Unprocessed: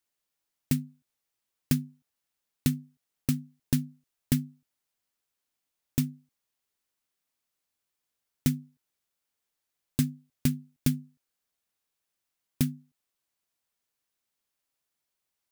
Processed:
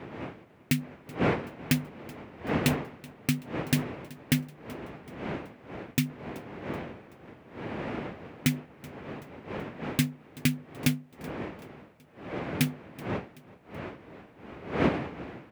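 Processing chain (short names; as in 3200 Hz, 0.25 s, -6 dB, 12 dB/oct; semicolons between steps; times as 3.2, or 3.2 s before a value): wind noise 420 Hz -37 dBFS; HPF 95 Hz 12 dB/oct; bell 2300 Hz +12.5 dB 1.4 oct; feedback echo 0.379 s, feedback 49%, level -21.5 dB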